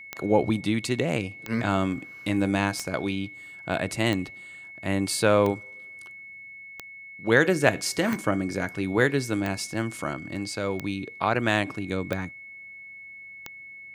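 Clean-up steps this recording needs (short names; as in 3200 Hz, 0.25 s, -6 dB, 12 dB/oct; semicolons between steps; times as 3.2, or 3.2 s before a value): de-click; notch 2200 Hz, Q 30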